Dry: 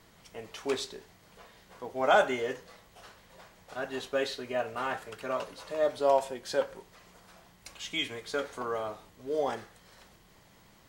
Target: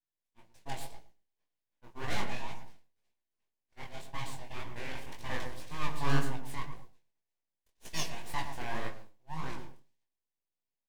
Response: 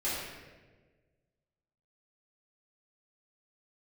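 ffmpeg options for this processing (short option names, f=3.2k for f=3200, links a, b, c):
-filter_complex "[0:a]aeval=exprs='abs(val(0))':c=same,equalizer=f=1.3k:w=7:g=-14,volume=19.5dB,asoftclip=hard,volume=-19.5dB,asettb=1/sr,asplit=3[a][b][c];[a]atrim=end=4.954[d];[b]atrim=start=4.95:end=6.36,asetpts=PTS-STARTPTS,afade=t=in:d=0.004:c=qsin,afade=t=out:st=1.406:d=0.004:c=qsin,acontrast=33[e];[c]atrim=start=6.356[f];[d][e]acrossfade=d=0.004:c1=hsin:c2=qsin[g];[g][f]acrossfade=d=0.004:c1=qsin:c2=hsin,asplit=2[h][i];[i]adelay=115,lowpass=f=910:p=1,volume=-5dB,asplit=2[j][k];[k]adelay=115,lowpass=f=910:p=1,volume=0.43,asplit=2[l][m];[m]adelay=115,lowpass=f=910:p=1,volume=0.43,asplit=2[n][o];[o]adelay=115,lowpass=f=910:p=1,volume=0.43,asplit=2[p][q];[q]adelay=115,lowpass=f=910:p=1,volume=0.43[r];[h][j][l][n][p][r]amix=inputs=6:normalize=0,asettb=1/sr,asplit=3[s][t][u];[s]atrim=end=7.854[v];[t]atrim=start=7.85:end=8.89,asetpts=PTS-STARTPTS,afade=t=in:d=0.004:c=qsin,afade=t=out:st=1.036:d=0.004:c=qsin,acontrast=37[w];[u]atrim=start=8.886[x];[v][w]acrossfade=d=0.004:c1=hsin:c2=qsin[y];[y][x]acrossfade=d=0.004:c1=qsin:c2=hsin,agate=range=-33dB:threshold=-32dB:ratio=3:detection=peak,flanger=delay=16.5:depth=7.9:speed=1.9,volume=-2.5dB"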